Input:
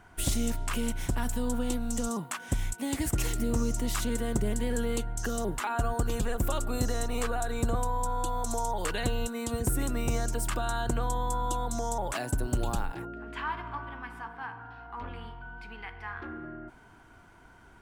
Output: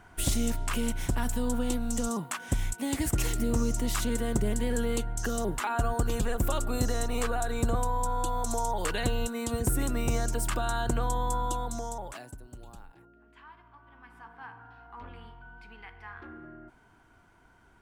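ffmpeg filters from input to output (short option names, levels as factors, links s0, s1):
-af "volume=4.73,afade=t=out:st=11.35:d=0.78:silence=0.316228,afade=t=out:st=12.13:d=0.26:silence=0.354813,afade=t=in:st=13.81:d=0.67:silence=0.237137"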